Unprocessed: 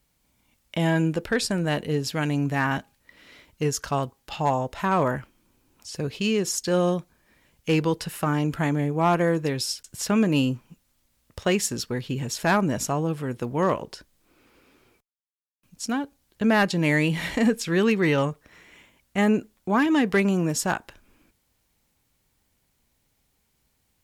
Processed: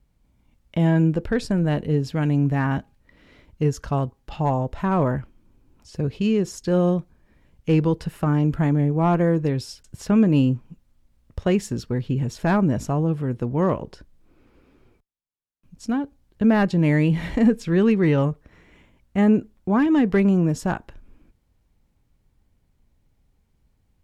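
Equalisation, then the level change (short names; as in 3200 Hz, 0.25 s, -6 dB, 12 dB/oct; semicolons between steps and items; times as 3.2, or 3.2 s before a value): tilt -3 dB/oct; -2.0 dB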